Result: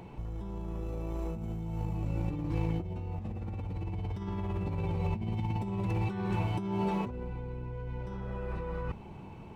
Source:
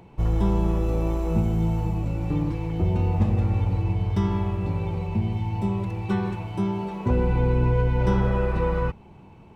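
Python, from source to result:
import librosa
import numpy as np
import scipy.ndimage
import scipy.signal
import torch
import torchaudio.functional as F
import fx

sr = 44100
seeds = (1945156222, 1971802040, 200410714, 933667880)

y = fx.over_compress(x, sr, threshold_db=-30.0, ratio=-1.0)
y = y * 10.0 ** (-4.5 / 20.0)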